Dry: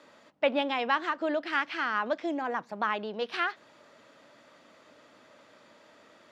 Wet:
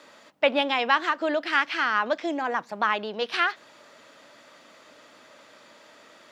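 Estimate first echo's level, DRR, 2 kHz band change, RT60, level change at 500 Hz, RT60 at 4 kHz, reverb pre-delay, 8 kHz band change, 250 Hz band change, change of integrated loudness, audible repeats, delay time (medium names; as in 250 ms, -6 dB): no echo, no reverb, +6.0 dB, no reverb, +4.0 dB, no reverb, no reverb, no reading, +2.5 dB, +5.0 dB, no echo, no echo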